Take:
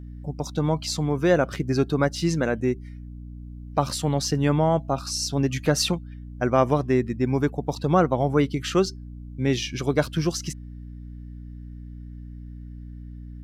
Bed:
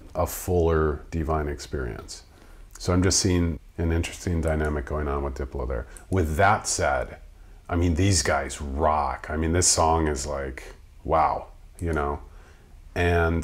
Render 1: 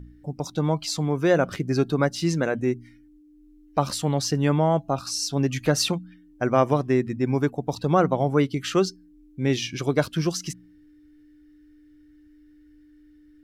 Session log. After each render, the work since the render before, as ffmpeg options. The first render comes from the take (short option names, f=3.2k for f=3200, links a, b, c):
-af "bandreject=f=60:t=h:w=4,bandreject=f=120:t=h:w=4,bandreject=f=180:t=h:w=4,bandreject=f=240:t=h:w=4"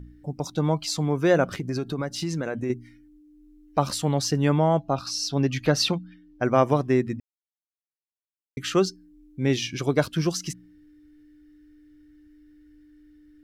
-filter_complex "[0:a]asettb=1/sr,asplit=3[a][b][c];[a]atrim=end=1.444[d];[b]atrim=start=1.44:end=2.7,asetpts=PTS-STARTPTS,afade=t=in:d=0.004:c=qsin,afade=t=out:st=1.256:d=0.004:c=qsin,acompressor=threshold=-24dB:ratio=6:attack=3.2:release=140:knee=1:detection=peak[e];[c]atrim=start=2.696[f];[d][e]acrossfade=d=0.004:c1=hsin:c2=qsin[g];[g][f]acrossfade=d=0.004:c1=qsin:c2=hsin,asettb=1/sr,asplit=3[h][i][j];[h]atrim=end=4.784[k];[i]atrim=start=4.78:end=6.45,asetpts=PTS-STARTPTS,afade=t=in:d=0.004:c=qsin,afade=t=out:st=1.666:d=0.004:c=qsin,highshelf=f=6.1k:t=q:w=1.5:g=-6[l];[j]atrim=start=6.446[m];[k][l]acrossfade=d=0.004:c1=hsin:c2=qsin[n];[n][m]acrossfade=d=0.004:c1=qsin:c2=hsin,asplit=3[o][p][q];[o]atrim=end=7.2,asetpts=PTS-STARTPTS,afade=t=out:st=7.196:d=0.004:c=hsin[r];[p]atrim=start=7.2:end=8.57,asetpts=PTS-STARTPTS,volume=0[s];[q]atrim=start=8.57,asetpts=PTS-STARTPTS,afade=t=in:d=0.004:c=hsin[t];[r][s][t]concat=n=3:v=0:a=1"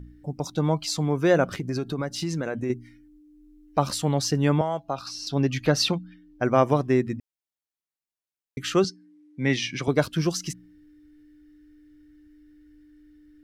-filter_complex "[0:a]asettb=1/sr,asplit=3[a][b][c];[a]atrim=end=4.614[d];[b]atrim=start=4.61:end=5.27,asetpts=PTS-STARTPTS,afade=t=in:d=0.004:c=qsin,afade=t=out:st=0.656:d=0.004:c=qsin,acrossover=split=510|3500[e][f][g];[e]acompressor=threshold=-36dB:ratio=4[h];[f]acompressor=threshold=-25dB:ratio=4[i];[g]acompressor=threshold=-40dB:ratio=4[j];[h][i][j]amix=inputs=3:normalize=0[k];[c]atrim=start=5.266[l];[d][k]acrossfade=d=0.004:c1=hsin:c2=qsin[m];[m][l]acrossfade=d=0.004:c1=qsin:c2=hsin,asettb=1/sr,asplit=3[n][o][p];[n]atrim=end=8.844[q];[o]atrim=start=8.84:end=9.88,asetpts=PTS-STARTPTS,afade=t=in:d=0.004:c=qsin,afade=t=out:st=1.036:d=0.004:c=qsin,highpass=f=120:w=0.5412,highpass=f=120:w=1.3066,equalizer=f=380:t=q:w=4:g=-5,equalizer=f=980:t=q:w=4:g=3,equalizer=f=2k:t=q:w=4:g=9,equalizer=f=7.2k:t=q:w=4:g=-5,lowpass=f=9.4k:w=0.5412,lowpass=f=9.4k:w=1.3066[r];[p]atrim=start=9.876[s];[q][r]acrossfade=d=0.004:c1=hsin:c2=qsin[t];[t][s]acrossfade=d=0.004:c1=qsin:c2=hsin"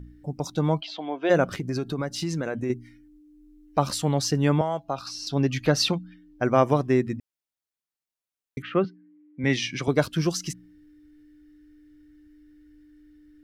-filter_complex "[0:a]asplit=3[a][b][c];[a]afade=t=out:st=0.8:d=0.02[d];[b]highpass=f=320:w=0.5412,highpass=f=320:w=1.3066,equalizer=f=430:t=q:w=4:g=-9,equalizer=f=670:t=q:w=4:g=7,equalizer=f=1.2k:t=q:w=4:g=-10,equalizer=f=2k:t=q:w=4:g=-4,equalizer=f=3.2k:t=q:w=4:g=8,lowpass=f=3.4k:w=0.5412,lowpass=f=3.4k:w=1.3066,afade=t=in:st=0.8:d=0.02,afade=t=out:st=1.29:d=0.02[e];[c]afade=t=in:st=1.29:d=0.02[f];[d][e][f]amix=inputs=3:normalize=0,asettb=1/sr,asplit=3[g][h][i];[g]atrim=end=8.624[j];[h]atrim=start=8.62:end=9.44,asetpts=PTS-STARTPTS,afade=t=in:d=0.004:c=qsin,afade=t=out:st=0.816:d=0.004:c=qsin,highpass=130,equalizer=f=390:t=q:w=4:g=-4,equalizer=f=560:t=q:w=4:g=3,equalizer=f=850:t=q:w=4:g=-4,equalizer=f=1.6k:t=q:w=4:g=-3,lowpass=f=2.4k:w=0.5412,lowpass=f=2.4k:w=1.3066[k];[i]atrim=start=9.436[l];[j][k]acrossfade=d=0.004:c1=hsin:c2=qsin[m];[m][l]acrossfade=d=0.004:c1=qsin:c2=hsin"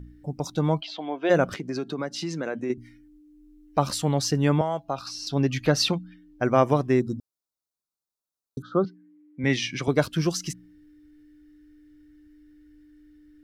-filter_complex "[0:a]asettb=1/sr,asplit=3[a][b][c];[a]atrim=end=1.544[d];[b]atrim=start=1.54:end=2.78,asetpts=PTS-STARTPTS,afade=t=in:d=0.004:c=qsin,afade=t=out:st=1.236:d=0.004:c=qsin,acrossover=split=160 7700:gain=0.0891 1 0.224[e][f][g];[e][f][g]amix=inputs=3:normalize=0[h];[c]atrim=start=2.776[i];[d][h]acrossfade=d=0.004:c1=hsin:c2=qsin[j];[j][i]acrossfade=d=0.004:c1=qsin:c2=hsin,asplit=3[k][l][m];[k]afade=t=out:st=6.99:d=0.02[n];[l]asuperstop=centerf=2300:order=12:qfactor=1.1,afade=t=in:st=6.99:d=0.02,afade=t=out:st=8.85:d=0.02[o];[m]afade=t=in:st=8.85:d=0.02[p];[n][o][p]amix=inputs=3:normalize=0"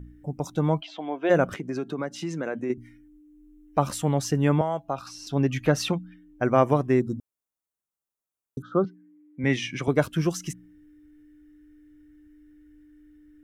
-af "equalizer=f=4.5k:t=o:w=0.64:g=-11"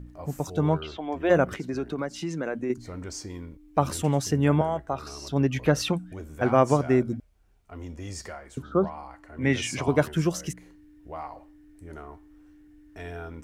-filter_complex "[1:a]volume=-16.5dB[a];[0:a][a]amix=inputs=2:normalize=0"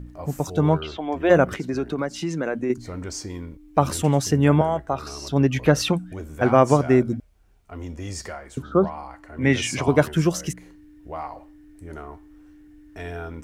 -af "volume=4.5dB,alimiter=limit=-3dB:level=0:latency=1"